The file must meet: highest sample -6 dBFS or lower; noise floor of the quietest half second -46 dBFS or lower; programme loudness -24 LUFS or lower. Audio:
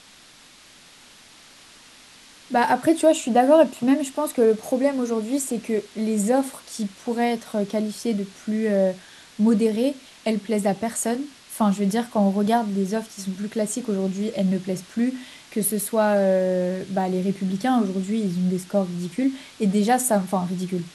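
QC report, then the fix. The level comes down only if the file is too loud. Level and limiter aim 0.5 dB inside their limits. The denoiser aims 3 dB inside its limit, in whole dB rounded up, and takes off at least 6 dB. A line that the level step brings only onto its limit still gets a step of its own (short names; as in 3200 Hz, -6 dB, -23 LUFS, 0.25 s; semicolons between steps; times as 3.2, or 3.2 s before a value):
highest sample -5.0 dBFS: fail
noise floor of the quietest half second -50 dBFS: OK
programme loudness -23.0 LUFS: fail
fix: gain -1.5 dB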